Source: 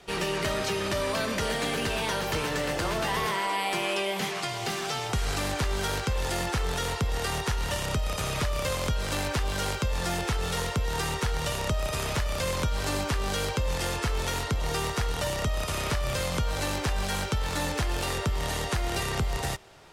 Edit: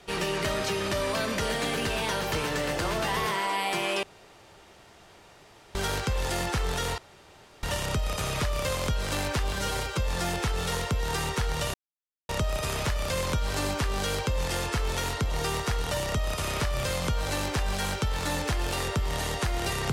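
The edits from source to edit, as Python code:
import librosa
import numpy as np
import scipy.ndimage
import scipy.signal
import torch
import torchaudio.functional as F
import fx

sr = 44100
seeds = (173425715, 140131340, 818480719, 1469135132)

y = fx.edit(x, sr, fx.room_tone_fill(start_s=4.03, length_s=1.72),
    fx.room_tone_fill(start_s=6.98, length_s=0.65),
    fx.stretch_span(start_s=9.53, length_s=0.3, factor=1.5),
    fx.insert_silence(at_s=11.59, length_s=0.55), tone=tone)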